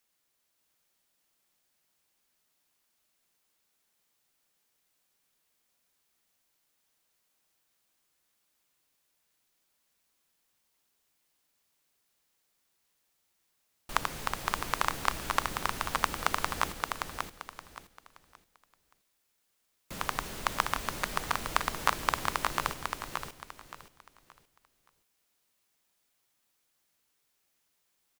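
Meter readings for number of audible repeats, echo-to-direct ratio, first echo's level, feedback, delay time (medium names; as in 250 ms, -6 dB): 3, -3.5 dB, -4.0 dB, 28%, 573 ms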